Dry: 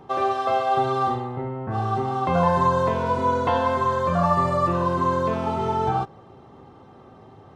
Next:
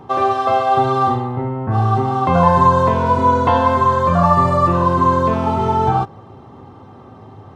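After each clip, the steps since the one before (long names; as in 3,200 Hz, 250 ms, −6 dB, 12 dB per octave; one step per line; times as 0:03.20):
graphic EQ with 15 bands 100 Hz +8 dB, 250 Hz +4 dB, 1,000 Hz +4 dB
level +4.5 dB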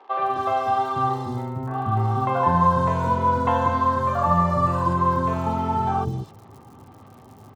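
surface crackle 110 per second −33 dBFS
three-band delay without the direct sound mids, lows, highs 190/260 ms, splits 430/3,800 Hz
level −6 dB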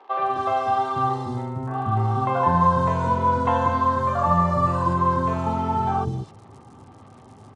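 AAC 64 kbit/s 22,050 Hz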